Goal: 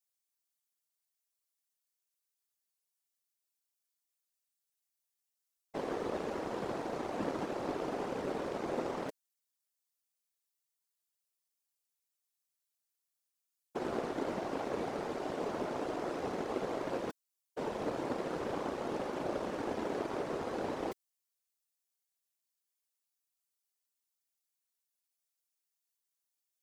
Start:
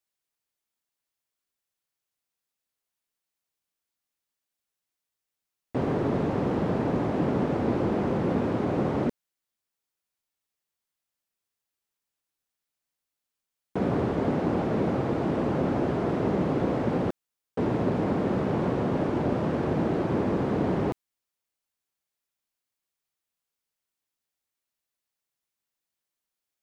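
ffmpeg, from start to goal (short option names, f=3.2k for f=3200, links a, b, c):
-af "afftfilt=real='hypot(re,im)*cos(2*PI*random(0))':imag='hypot(re,im)*sin(2*PI*random(1))':win_size=512:overlap=0.75,aeval=exprs='0.133*(cos(1*acos(clip(val(0)/0.133,-1,1)))-cos(1*PI/2))+0.00531*(cos(7*acos(clip(val(0)/0.133,-1,1)))-cos(7*PI/2))':c=same,bass=f=250:g=-15,treble=f=4k:g=10"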